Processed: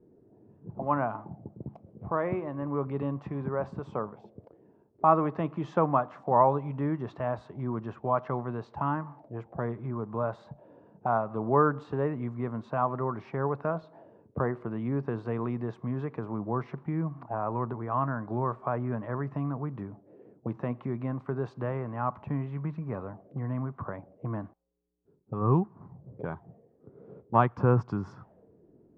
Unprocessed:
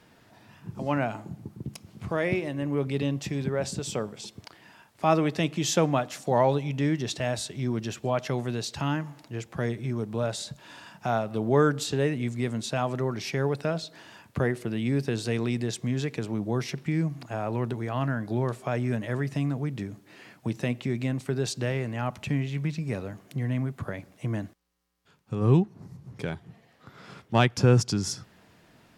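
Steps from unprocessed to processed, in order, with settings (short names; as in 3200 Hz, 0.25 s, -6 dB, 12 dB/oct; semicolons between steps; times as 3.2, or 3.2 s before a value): envelope low-pass 370–1100 Hz up, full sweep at -29.5 dBFS; gain -4.5 dB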